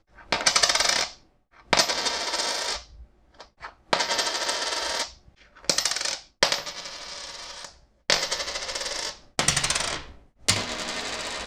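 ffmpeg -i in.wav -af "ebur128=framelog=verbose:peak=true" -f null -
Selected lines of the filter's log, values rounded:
Integrated loudness:
  I:         -24.9 LUFS
  Threshold: -35.7 LUFS
Loudness range:
  LRA:         3.9 LU
  Threshold: -46.4 LUFS
  LRA low:   -27.8 LUFS
  LRA high:  -23.8 LUFS
True peak:
  Peak:       -1.6 dBFS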